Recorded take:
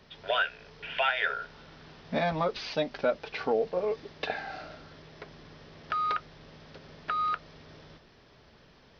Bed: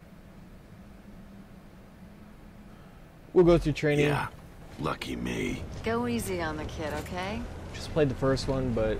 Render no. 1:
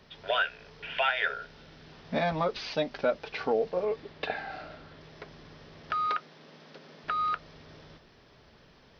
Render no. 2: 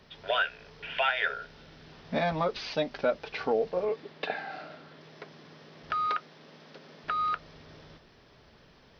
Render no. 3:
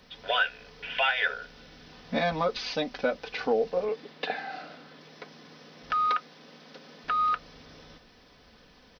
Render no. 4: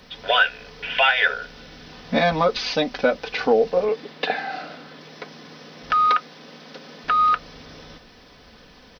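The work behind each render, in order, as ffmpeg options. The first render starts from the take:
-filter_complex "[0:a]asettb=1/sr,asplit=3[s0][s1][s2];[s0]atrim=end=1.284[s3];[s1]atrim=start=1.28:end=1.92,asetpts=PTS-STARTPTS,afade=t=in:d=0.004:c=qsin,afade=t=out:st=0.636:d=0.004:c=qsin,equalizer=f=1100:w=1.5:g=-5.5[s4];[s2]atrim=start=1.916[s5];[s3][s4]acrossfade=d=0.004:c1=hsin:c2=qsin[s6];[s6][s5]acrossfade=d=0.004:c1=qsin:c2=hsin,asettb=1/sr,asplit=3[s7][s8][s9];[s7]atrim=end=3.844[s10];[s8]atrim=start=3.84:end=5.01,asetpts=PTS-STARTPTS,afade=t=in:d=0.004:c=qsin,afade=t=out:st=1.166:d=0.004:c=qsin,lowpass=4500[s11];[s9]atrim=start=5.006[s12];[s10][s11]acrossfade=d=0.004:c1=hsin:c2=qsin[s13];[s13][s12]acrossfade=d=0.004:c1=qsin:c2=hsin,asettb=1/sr,asplit=3[s14][s15][s16];[s14]atrim=end=6.074[s17];[s15]atrim=start=6.07:end=7.04,asetpts=PTS-STARTPTS,afade=t=in:d=0.004:c=qsin,afade=t=out:st=0.966:d=0.004:c=qsin,highpass=f=170:w=0.5412,highpass=f=170:w=1.3066[s18];[s16]atrim=start=7.036[s19];[s17][s18]acrossfade=d=0.004:c1=hsin:c2=qsin[s20];[s20][s19]acrossfade=d=0.004:c1=qsin:c2=hsin"
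-filter_complex "[0:a]asettb=1/sr,asplit=3[s0][s1][s2];[s0]atrim=end=3.894[s3];[s1]atrim=start=3.89:end=5.82,asetpts=PTS-STARTPTS,afade=t=in:d=0.004:c=qsin,afade=t=out:st=1.926:d=0.004:c=qsin,highpass=f=140:w=0.5412,highpass=f=140:w=1.3066[s4];[s2]atrim=start=5.816[s5];[s3][s4]acrossfade=d=0.004:c1=hsin:c2=qsin[s6];[s6][s5]acrossfade=d=0.004:c1=qsin:c2=hsin"
-af "highshelf=f=4700:g=7,aecho=1:1:4:0.47"
-af "volume=2.51"

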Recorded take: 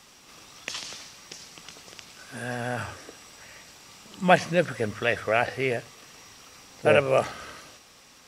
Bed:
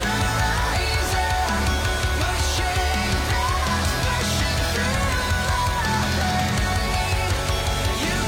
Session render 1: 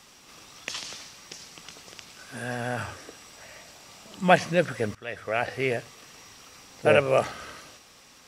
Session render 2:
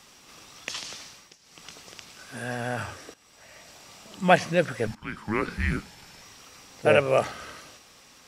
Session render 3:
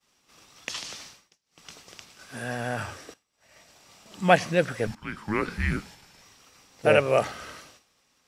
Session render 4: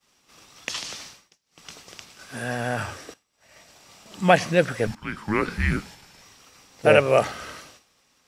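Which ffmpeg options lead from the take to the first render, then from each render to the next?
-filter_complex "[0:a]asettb=1/sr,asplit=3[s0][s1][s2];[s0]atrim=end=3.364[s3];[s1]atrim=start=3.36:end=4.19,asetpts=PTS-STARTPTS,afade=t=in:d=0.004:c=qsin,afade=t=out:st=0.826:d=0.004:c=qsin,equalizer=f=650:w=3.7:g=8[s4];[s2]atrim=start=4.186[s5];[s3][s4]acrossfade=d=0.004:c1=hsin:c2=qsin[s6];[s6][s5]acrossfade=d=0.004:c1=qsin:c2=hsin,asplit=2[s7][s8];[s7]atrim=end=4.95,asetpts=PTS-STARTPTS,afade=t=out:st=4.946:d=0.004:c=hsin:silence=0.1[s9];[s8]atrim=start=4.95,asetpts=PTS-STARTPTS,afade=t=in:d=0.69:silence=0.1[s10];[s9][s10]concat=n=2:v=0:a=1"
-filter_complex "[0:a]asettb=1/sr,asplit=3[s0][s1][s2];[s0]atrim=end=4.874[s3];[s1]atrim=start=4.87:end=6.22,asetpts=PTS-STARTPTS,afade=t=in:d=0.004:c=qsin,afade=t=out:st=1.346:d=0.004:c=qsin,afreqshift=-320[s4];[s2]atrim=start=6.216[s5];[s3][s4]acrossfade=d=0.004:c1=hsin:c2=qsin[s6];[s6][s5]acrossfade=d=0.004:c1=qsin:c2=hsin,asplit=4[s7][s8][s9][s10];[s7]atrim=end=1.36,asetpts=PTS-STARTPTS,afade=t=out:st=1.12:d=0.24:silence=0.16788[s11];[s8]atrim=start=1.36:end=1.42,asetpts=PTS-STARTPTS,volume=0.168[s12];[s9]atrim=start=1.42:end=3.14,asetpts=PTS-STARTPTS,afade=t=in:d=0.24:silence=0.16788,afade=t=out:st=1.716:d=0.004:c=hsin:silence=0.188365[s13];[s10]atrim=start=3.14,asetpts=PTS-STARTPTS,afade=t=in:d=0.62:silence=0.188365[s14];[s11][s12][s13][s14]concat=n=4:v=0:a=1"
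-af "agate=range=0.0224:threshold=0.00708:ratio=3:detection=peak"
-af "volume=1.5,alimiter=limit=0.794:level=0:latency=1"

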